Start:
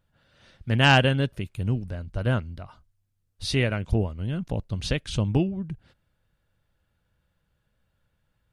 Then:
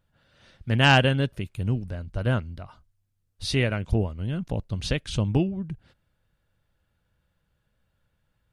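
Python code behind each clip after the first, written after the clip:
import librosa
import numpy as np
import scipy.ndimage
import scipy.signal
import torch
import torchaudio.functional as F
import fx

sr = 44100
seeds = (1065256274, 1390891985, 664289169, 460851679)

y = x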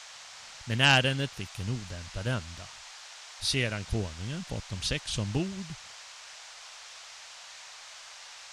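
y = fx.high_shelf(x, sr, hz=2400.0, db=12.0)
y = fx.dmg_noise_band(y, sr, seeds[0], low_hz=630.0, high_hz=6900.0, level_db=-40.0)
y = y * 10.0 ** (-7.5 / 20.0)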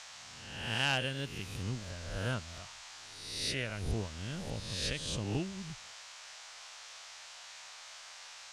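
y = fx.spec_swells(x, sr, rise_s=0.92)
y = fx.rider(y, sr, range_db=3, speed_s=0.5)
y = y * 10.0 ** (-8.5 / 20.0)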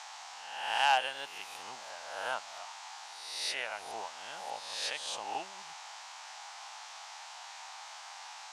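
y = fx.highpass_res(x, sr, hz=820.0, q=4.9)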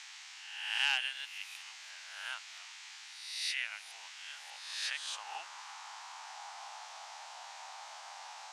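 y = fx.filter_sweep_highpass(x, sr, from_hz=2100.0, to_hz=530.0, start_s=4.28, end_s=7.15, q=1.6)
y = y * 10.0 ** (-2.5 / 20.0)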